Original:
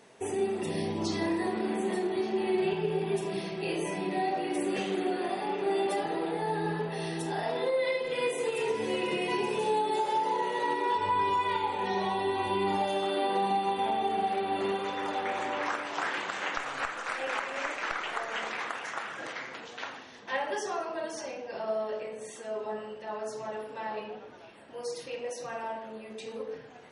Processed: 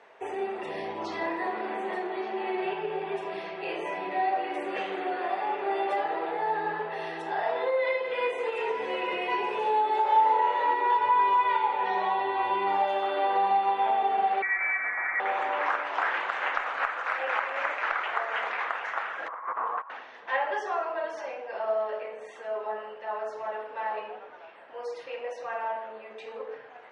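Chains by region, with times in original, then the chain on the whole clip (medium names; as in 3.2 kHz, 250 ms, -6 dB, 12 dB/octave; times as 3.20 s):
10.02–10.71 s: treble shelf 7.2 kHz -6 dB + doubling 34 ms -4 dB
14.42–15.20 s: steep high-pass 350 Hz 48 dB/octave + frequency inversion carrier 2.7 kHz
19.28–19.90 s: self-modulated delay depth 0.079 ms + resonant low-pass 1.1 kHz, resonance Q 9 + compressor with a negative ratio -38 dBFS, ratio -0.5
whole clip: low-pass 6.5 kHz 12 dB/octave; three-band isolator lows -22 dB, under 490 Hz, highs -18 dB, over 2.6 kHz; trim +6 dB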